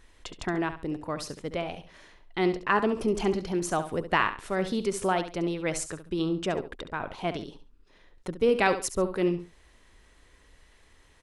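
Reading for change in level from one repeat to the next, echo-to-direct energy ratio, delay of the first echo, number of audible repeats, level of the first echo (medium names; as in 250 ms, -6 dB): -11.5 dB, -10.5 dB, 69 ms, 2, -11.0 dB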